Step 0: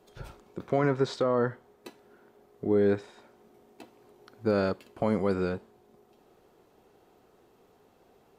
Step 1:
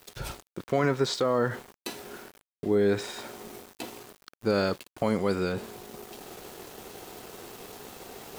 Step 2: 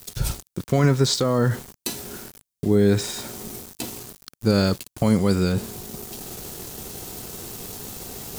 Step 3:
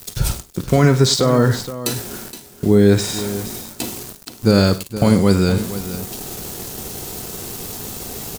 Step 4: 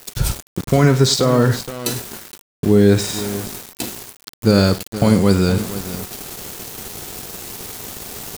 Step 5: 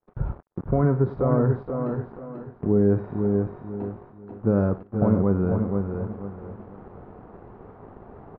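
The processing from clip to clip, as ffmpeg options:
-af "highshelf=f=2600:g=11.5,areverse,acompressor=mode=upward:threshold=0.0398:ratio=2.5,areverse,aeval=exprs='val(0)*gte(abs(val(0)),0.00631)':c=same"
-af "bass=f=250:g=13,treble=f=4000:g=12,volume=1.19"
-af "aecho=1:1:40|53|101|469:0.126|0.141|0.133|0.224,volume=1.88"
-af "aeval=exprs='val(0)*gte(abs(val(0)),0.0447)':c=same"
-af "lowpass=f=1200:w=0.5412,lowpass=f=1200:w=1.3066,agate=range=0.0224:threshold=0.00794:ratio=3:detection=peak,aecho=1:1:489|978|1467|1956:0.501|0.14|0.0393|0.011,volume=0.422"

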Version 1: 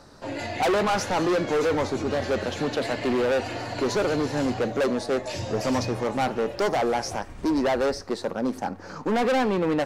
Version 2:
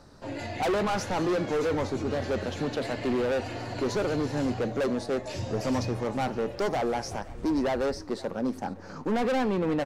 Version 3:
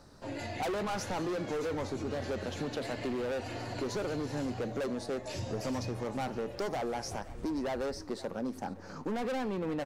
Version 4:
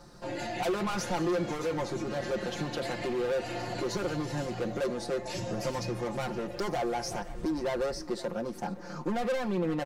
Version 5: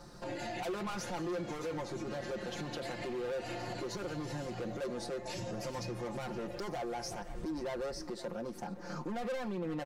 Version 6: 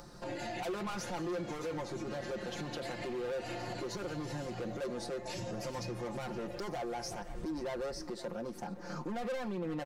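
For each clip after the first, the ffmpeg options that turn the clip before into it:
-af "lowshelf=f=270:g=6,aecho=1:1:520:0.0944,volume=0.531"
-af "highshelf=f=7400:g=5.5,acompressor=threshold=0.0398:ratio=6,volume=0.668"
-filter_complex "[0:a]aecho=1:1:5.7:0.81,asplit=2[s0][s1];[s1]asoftclip=type=hard:threshold=0.02,volume=0.251[s2];[s0][s2]amix=inputs=2:normalize=0"
-af "alimiter=level_in=2.37:limit=0.0631:level=0:latency=1:release=259,volume=0.422"
-af "acompressor=mode=upward:threshold=0.00251:ratio=2.5"

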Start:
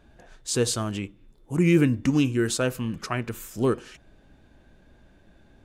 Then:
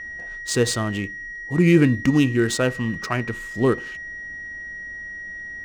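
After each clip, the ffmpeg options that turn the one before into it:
-af "aeval=exprs='val(0)+0.0178*sin(2*PI*1900*n/s)':c=same,adynamicsmooth=sensitivity=7.5:basefreq=3300,volume=1.58"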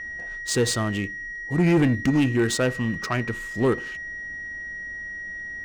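-af "asoftclip=type=tanh:threshold=0.211"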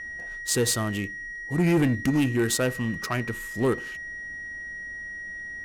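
-af "equalizer=f=12000:w=1.1:g=14,volume=0.75"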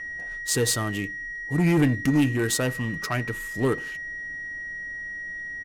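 -af "aecho=1:1:6.8:0.35"

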